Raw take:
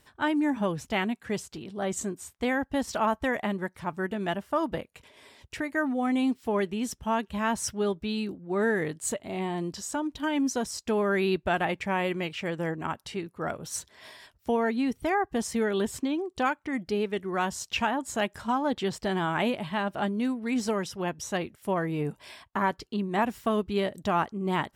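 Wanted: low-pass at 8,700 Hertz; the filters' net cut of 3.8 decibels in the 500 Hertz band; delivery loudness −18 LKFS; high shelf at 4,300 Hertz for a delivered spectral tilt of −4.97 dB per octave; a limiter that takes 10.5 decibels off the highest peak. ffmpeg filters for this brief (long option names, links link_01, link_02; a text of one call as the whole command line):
ffmpeg -i in.wav -af "lowpass=8700,equalizer=frequency=500:width_type=o:gain=-5,highshelf=frequency=4300:gain=-6,volume=17.5dB,alimiter=limit=-8dB:level=0:latency=1" out.wav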